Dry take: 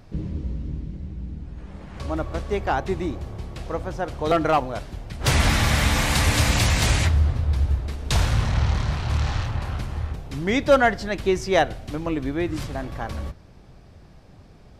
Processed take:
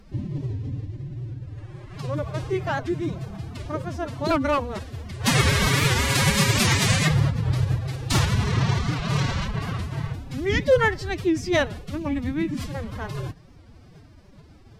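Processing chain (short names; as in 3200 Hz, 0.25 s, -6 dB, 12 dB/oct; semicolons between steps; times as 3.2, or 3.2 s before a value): bell 750 Hz -6.5 dB 0.37 oct; formant-preserving pitch shift +11 st; record warp 78 rpm, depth 160 cents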